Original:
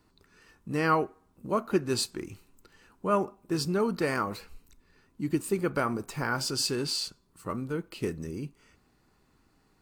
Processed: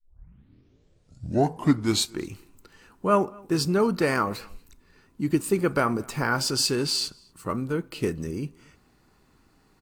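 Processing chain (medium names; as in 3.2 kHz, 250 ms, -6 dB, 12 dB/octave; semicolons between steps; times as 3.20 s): tape start-up on the opening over 2.20 s; echo from a far wall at 40 m, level -26 dB; trim +5 dB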